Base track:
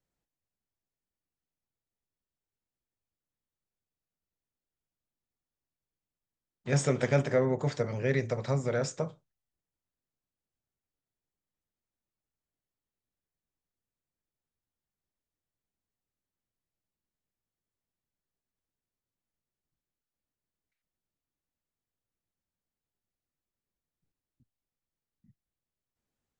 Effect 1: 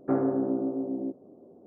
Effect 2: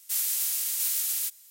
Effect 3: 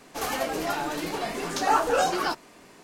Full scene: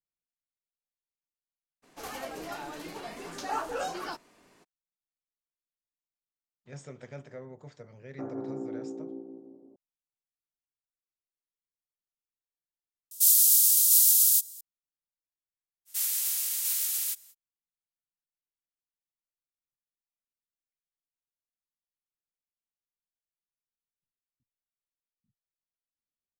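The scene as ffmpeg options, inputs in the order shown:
ffmpeg -i bed.wav -i cue0.wav -i cue1.wav -i cue2.wav -filter_complex "[2:a]asplit=2[link_01][link_02];[0:a]volume=-18dB[link_03];[1:a]asplit=2[link_04][link_05];[link_05]adelay=172,lowpass=frequency=2000:poles=1,volume=-4.5dB,asplit=2[link_06][link_07];[link_07]adelay=172,lowpass=frequency=2000:poles=1,volume=0.55,asplit=2[link_08][link_09];[link_09]adelay=172,lowpass=frequency=2000:poles=1,volume=0.55,asplit=2[link_10][link_11];[link_11]adelay=172,lowpass=frequency=2000:poles=1,volume=0.55,asplit=2[link_12][link_13];[link_13]adelay=172,lowpass=frequency=2000:poles=1,volume=0.55,asplit=2[link_14][link_15];[link_15]adelay=172,lowpass=frequency=2000:poles=1,volume=0.55,asplit=2[link_16][link_17];[link_17]adelay=172,lowpass=frequency=2000:poles=1,volume=0.55[link_18];[link_04][link_06][link_08][link_10][link_12][link_14][link_16][link_18]amix=inputs=8:normalize=0[link_19];[link_01]aexciter=amount=15.6:drive=3:freq=3000[link_20];[link_02]acrusher=bits=10:mix=0:aa=0.000001[link_21];[link_03]asplit=2[link_22][link_23];[link_22]atrim=end=13.114[link_24];[link_20]atrim=end=1.5,asetpts=PTS-STARTPTS,volume=-17.5dB[link_25];[link_23]atrim=start=14.606[link_26];[3:a]atrim=end=2.83,asetpts=PTS-STARTPTS,volume=-10.5dB,afade=type=in:duration=0.02,afade=type=out:start_time=2.81:duration=0.02,adelay=1820[link_27];[link_19]atrim=end=1.66,asetpts=PTS-STARTPTS,volume=-12.5dB,afade=type=in:duration=0.004:curve=hsin,afade=type=out:start_time=1.656:duration=0.004:curve=hsin,adelay=357210S[link_28];[link_21]atrim=end=1.5,asetpts=PTS-STARTPTS,volume=-1.5dB,afade=type=in:duration=0.05,afade=type=out:start_time=1.45:duration=0.05,adelay=15850[link_29];[link_24][link_25]acrossfade=duration=0.004:curve1=hsin:curve2=hsin[link_30];[link_30][link_26]acrossfade=duration=0.004:curve1=hsin:curve2=hsin[link_31];[link_31][link_27][link_28][link_29]amix=inputs=4:normalize=0" out.wav

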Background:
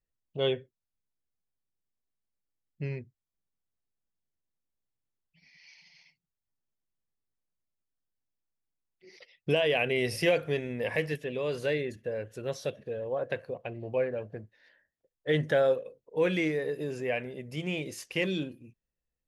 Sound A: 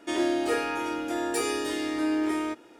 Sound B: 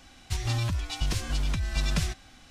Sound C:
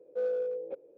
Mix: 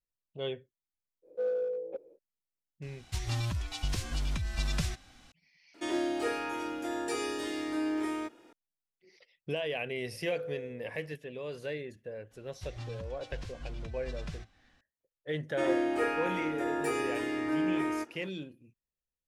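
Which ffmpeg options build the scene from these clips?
ffmpeg -i bed.wav -i cue0.wav -i cue1.wav -i cue2.wav -filter_complex "[3:a]asplit=2[link_01][link_02];[2:a]asplit=2[link_03][link_04];[1:a]asplit=2[link_05][link_06];[0:a]volume=-8dB[link_07];[link_05]acrossover=split=8300[link_08][link_09];[link_09]acompressor=threshold=-49dB:ratio=4:attack=1:release=60[link_10];[link_08][link_10]amix=inputs=2:normalize=0[link_11];[link_04]aemphasis=mode=reproduction:type=50fm[link_12];[link_06]highshelf=frequency=2900:width_type=q:width=1.5:gain=-7.5[link_13];[link_01]atrim=end=0.97,asetpts=PTS-STARTPTS,volume=-0.5dB,afade=type=in:duration=0.05,afade=type=out:start_time=0.92:duration=0.05,adelay=1220[link_14];[link_03]atrim=end=2.5,asetpts=PTS-STARTPTS,volume=-4.5dB,afade=type=in:duration=0.004:curve=hsin,afade=type=out:start_time=2.496:duration=0.004:curve=hsin,adelay=2820[link_15];[link_11]atrim=end=2.79,asetpts=PTS-STARTPTS,volume=-5.5dB,afade=type=in:duration=0.004:curve=hsin,afade=type=out:start_time=2.786:duration=0.004:curve=hsin,adelay=5740[link_16];[link_02]atrim=end=0.97,asetpts=PTS-STARTPTS,volume=-9dB,afade=type=in:duration=0.004:curve=hsin,afade=type=out:start_time=0.966:duration=0.004:curve=hsin,adelay=10150[link_17];[link_12]atrim=end=2.5,asetpts=PTS-STARTPTS,volume=-13.5dB,afade=type=in:duration=0.004:curve=hsin,afade=type=out:start_time=2.496:duration=0.004:curve=hsin,adelay=12310[link_18];[link_13]atrim=end=2.79,asetpts=PTS-STARTPTS,volume=-3.5dB,afade=type=in:duration=0.004:curve=hsin,afade=type=out:start_time=2.786:duration=0.004:curve=hsin,adelay=15500[link_19];[link_07][link_14][link_15][link_16][link_17][link_18][link_19]amix=inputs=7:normalize=0" out.wav

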